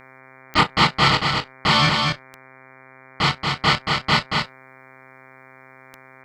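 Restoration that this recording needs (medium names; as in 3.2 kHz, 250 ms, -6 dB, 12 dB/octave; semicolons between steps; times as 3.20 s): de-click; de-hum 131.4 Hz, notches 18; inverse comb 231 ms -4 dB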